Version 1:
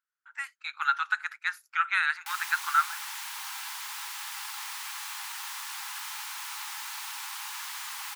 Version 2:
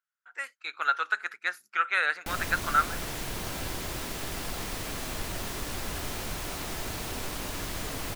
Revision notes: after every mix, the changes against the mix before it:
master: remove linear-phase brick-wall high-pass 780 Hz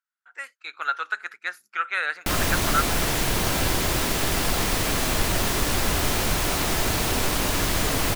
background +11.5 dB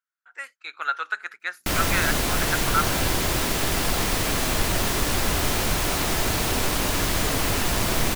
background: entry −0.60 s

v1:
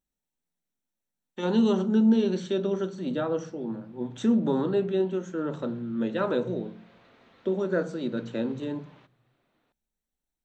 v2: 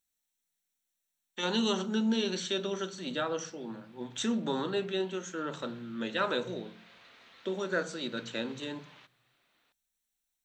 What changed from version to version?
master: add tilt shelving filter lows −9.5 dB, about 1,100 Hz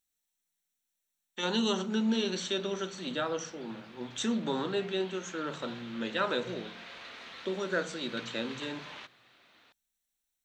background +10.5 dB

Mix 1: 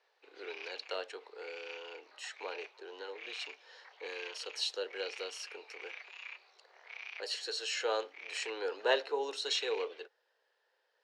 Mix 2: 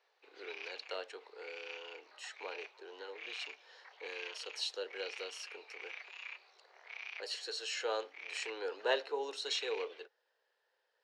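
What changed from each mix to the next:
speech −3.0 dB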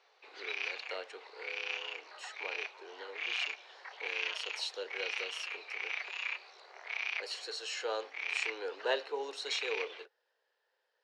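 background +9.5 dB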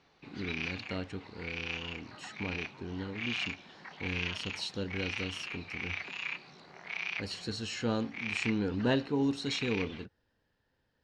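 master: remove Butterworth high-pass 420 Hz 48 dB per octave

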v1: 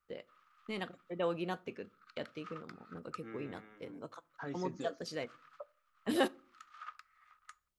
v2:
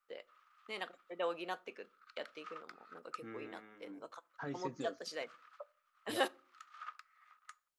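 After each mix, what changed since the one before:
first voice: add high-pass filter 510 Hz 12 dB per octave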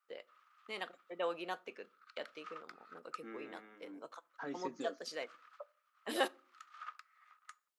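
second voice: add high-pass filter 200 Hz 24 dB per octave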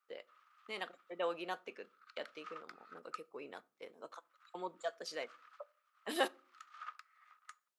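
second voice: muted

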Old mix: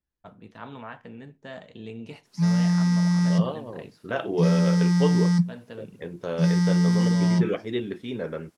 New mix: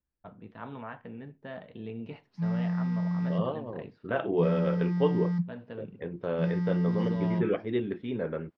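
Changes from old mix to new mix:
background −8.0 dB
master: add high-frequency loss of the air 350 metres

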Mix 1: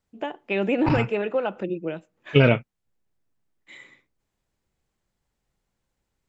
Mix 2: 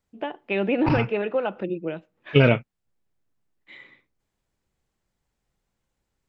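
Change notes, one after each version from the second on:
first voice: add low-pass filter 4,400 Hz 24 dB per octave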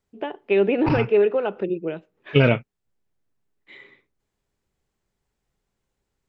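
first voice: add parametric band 410 Hz +12.5 dB 0.22 octaves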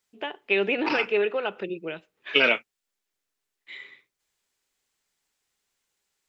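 second voice: add high-pass filter 260 Hz 24 dB per octave
master: add tilt shelving filter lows −9 dB, about 1,200 Hz

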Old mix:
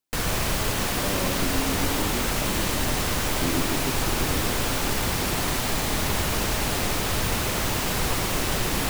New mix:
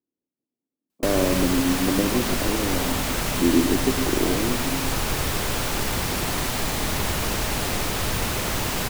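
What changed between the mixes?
speech +9.5 dB
background: entry +0.90 s

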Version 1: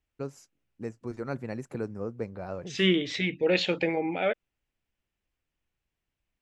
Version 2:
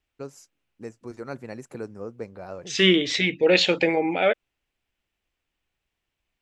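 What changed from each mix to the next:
second voice +6.5 dB
master: add bass and treble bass −5 dB, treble +5 dB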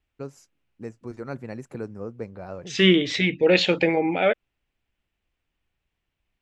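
master: add bass and treble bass +5 dB, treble −5 dB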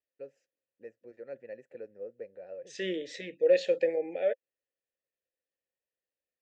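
second voice: remove low-pass with resonance 2,700 Hz, resonance Q 2.7
master: add formant filter e

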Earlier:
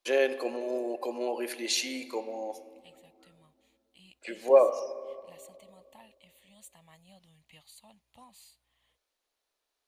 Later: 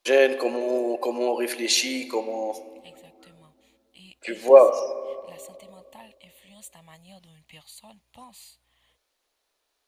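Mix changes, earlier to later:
first voice +7.5 dB
second voice +7.5 dB

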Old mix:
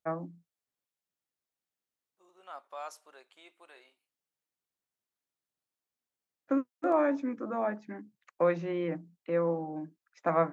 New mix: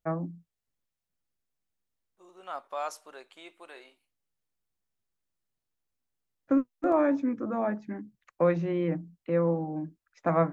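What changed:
second voice +6.5 dB
master: remove high-pass filter 390 Hz 6 dB per octave

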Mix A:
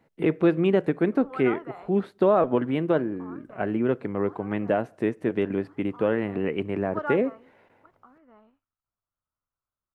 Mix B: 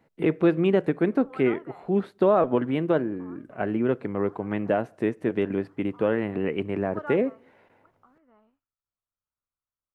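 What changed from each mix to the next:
background −5.5 dB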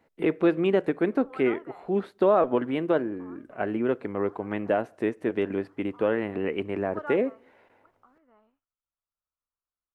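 master: add parametric band 140 Hz −8 dB 1.2 octaves

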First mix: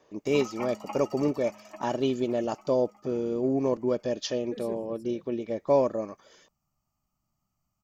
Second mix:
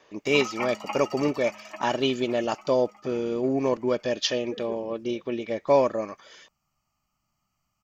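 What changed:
second voice: add resonant band-pass 470 Hz, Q 0.86
master: add parametric band 2,500 Hz +11 dB 2.6 octaves

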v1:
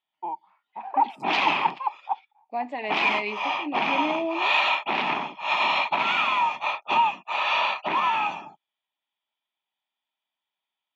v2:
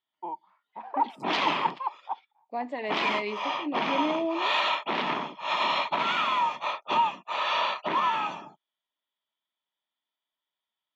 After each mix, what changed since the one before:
master: add thirty-one-band graphic EQ 500 Hz +4 dB, 800 Hz −8 dB, 2,500 Hz −9 dB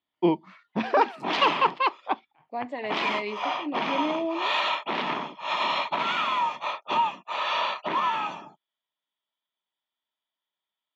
first voice: remove resonant band-pass 880 Hz, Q 7.4

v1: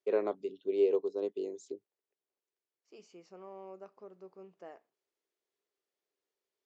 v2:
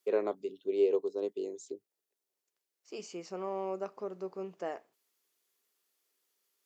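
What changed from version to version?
second voice +11.5 dB
master: remove high-frequency loss of the air 67 metres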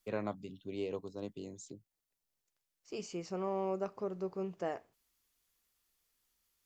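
first voice: remove high-pass with resonance 400 Hz, resonance Q 4.8
second voice: remove high-pass filter 260 Hz 12 dB per octave

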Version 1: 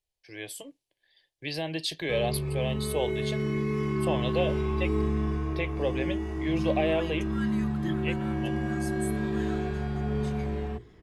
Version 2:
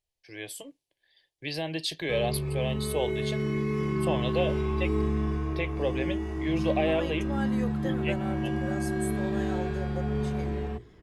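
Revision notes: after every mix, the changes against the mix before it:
second voice: remove elliptic high-pass filter 1,100 Hz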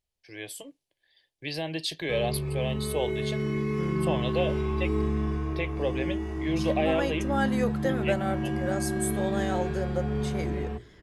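second voice +8.0 dB

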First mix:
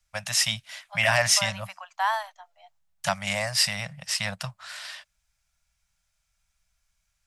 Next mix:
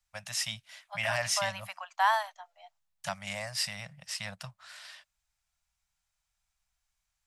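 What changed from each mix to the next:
first voice −9.5 dB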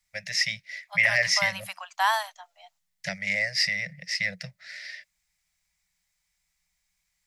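first voice: add drawn EQ curve 120 Hz 0 dB, 180 Hz +12 dB, 280 Hz −17 dB, 480 Hz +12 dB, 1,100 Hz −22 dB, 2,000 Hz +14 dB, 3,000 Hz −8 dB, 5,200 Hz +1 dB, 8,200 Hz −17 dB
master: add high-shelf EQ 2,500 Hz +10 dB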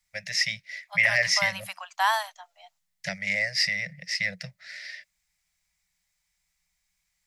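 nothing changed

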